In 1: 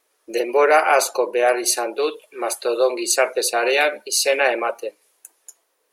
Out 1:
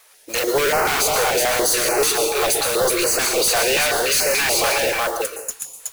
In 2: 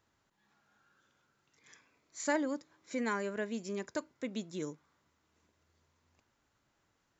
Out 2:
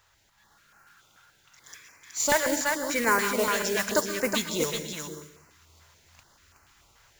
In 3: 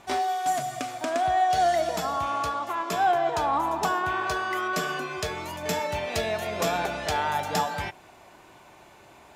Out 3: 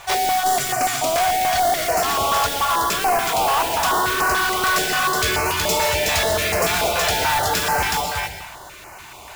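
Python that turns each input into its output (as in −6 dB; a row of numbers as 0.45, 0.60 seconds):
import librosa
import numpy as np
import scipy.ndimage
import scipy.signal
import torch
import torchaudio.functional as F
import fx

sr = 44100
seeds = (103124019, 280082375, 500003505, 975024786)

p1 = fx.rider(x, sr, range_db=5, speed_s=0.5)
p2 = x + (p1 * 10.0 ** (3.0 / 20.0))
p3 = 10.0 ** (-10.0 / 20.0) * np.tanh(p2 / 10.0 ** (-10.0 / 20.0))
p4 = fx.peak_eq(p3, sr, hz=250.0, db=-13.5, octaves=2.3)
p5 = p4 + fx.echo_single(p4, sr, ms=371, db=-5.0, dry=0)
p6 = fx.rev_plate(p5, sr, seeds[0], rt60_s=0.69, hf_ratio=0.85, predelay_ms=105, drr_db=7.0)
p7 = np.clip(10.0 ** (23.0 / 20.0) * p6, -1.0, 1.0) / 10.0 ** (23.0 / 20.0)
p8 = fx.dynamic_eq(p7, sr, hz=410.0, q=2.1, threshold_db=-41.0, ratio=4.0, max_db=4)
p9 = fx.mod_noise(p8, sr, seeds[1], snr_db=12)
p10 = fx.filter_held_notch(p9, sr, hz=6.9, low_hz=270.0, high_hz=3500.0)
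y = librosa.util.normalize(p10) * 10.0 ** (-9 / 20.0)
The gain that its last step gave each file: +6.5, +9.5, +7.0 decibels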